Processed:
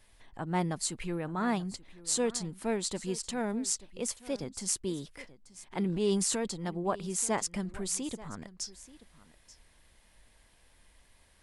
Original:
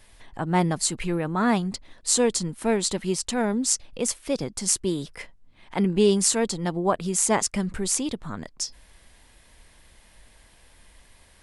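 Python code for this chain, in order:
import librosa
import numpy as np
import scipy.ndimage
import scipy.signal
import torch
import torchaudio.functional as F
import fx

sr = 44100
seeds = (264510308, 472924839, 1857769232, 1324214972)

y = fx.transient(x, sr, attack_db=-7, sustain_db=6, at=(5.83, 6.48))
y = y + 10.0 ** (-18.5 / 20.0) * np.pad(y, (int(883 * sr / 1000.0), 0))[:len(y)]
y = y * librosa.db_to_amplitude(-8.5)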